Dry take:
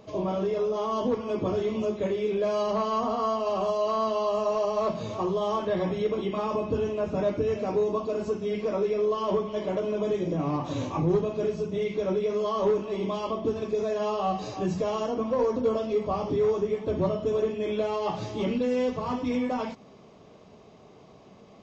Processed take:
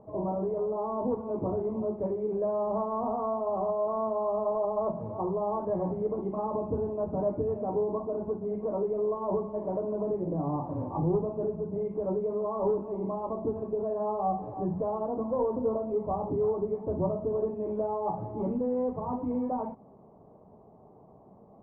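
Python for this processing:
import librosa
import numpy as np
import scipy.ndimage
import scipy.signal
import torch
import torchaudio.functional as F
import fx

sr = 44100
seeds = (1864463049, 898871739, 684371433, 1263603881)

y = fx.ladder_lowpass(x, sr, hz=1000.0, resonance_pct=55)
y = fx.low_shelf(y, sr, hz=460.0, db=8.5)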